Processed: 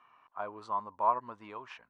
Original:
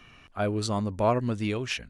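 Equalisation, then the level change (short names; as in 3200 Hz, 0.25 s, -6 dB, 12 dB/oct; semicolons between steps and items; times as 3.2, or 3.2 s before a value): band-pass 1000 Hz, Q 6.5; +5.5 dB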